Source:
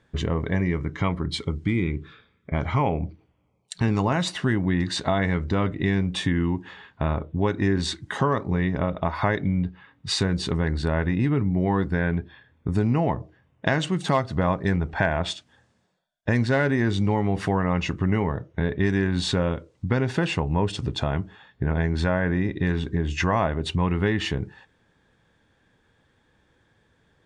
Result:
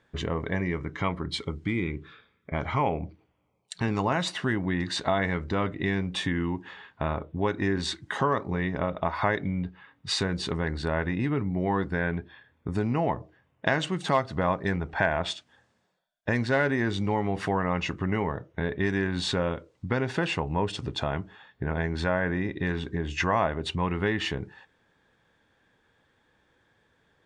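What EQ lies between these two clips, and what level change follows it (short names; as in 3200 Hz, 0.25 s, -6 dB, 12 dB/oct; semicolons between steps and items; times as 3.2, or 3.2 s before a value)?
low shelf 290 Hz -8 dB; high shelf 4600 Hz -5 dB; 0.0 dB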